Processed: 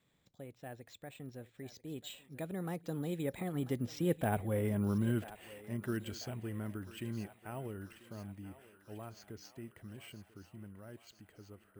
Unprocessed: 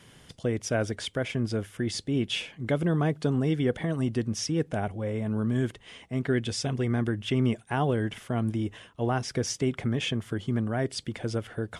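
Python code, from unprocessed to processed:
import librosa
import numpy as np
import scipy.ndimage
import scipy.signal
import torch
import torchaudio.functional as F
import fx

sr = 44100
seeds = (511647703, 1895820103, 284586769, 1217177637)

y = fx.doppler_pass(x, sr, speed_mps=39, closest_m=21.0, pass_at_s=4.48)
y = np.repeat(scipy.signal.resample_poly(y, 1, 4), 4)[:len(y)]
y = fx.echo_thinned(y, sr, ms=990, feedback_pct=69, hz=500.0, wet_db=-14)
y = y * 10.0 ** (-2.5 / 20.0)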